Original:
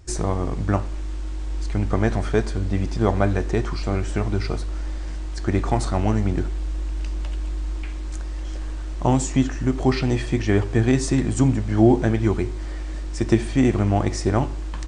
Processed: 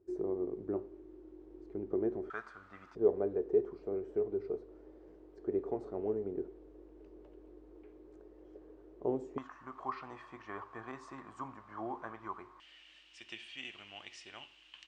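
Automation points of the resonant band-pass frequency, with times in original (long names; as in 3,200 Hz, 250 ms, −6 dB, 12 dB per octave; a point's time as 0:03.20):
resonant band-pass, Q 8.4
380 Hz
from 0:02.30 1,300 Hz
from 0:02.95 420 Hz
from 0:09.38 1,100 Hz
from 0:12.60 2,900 Hz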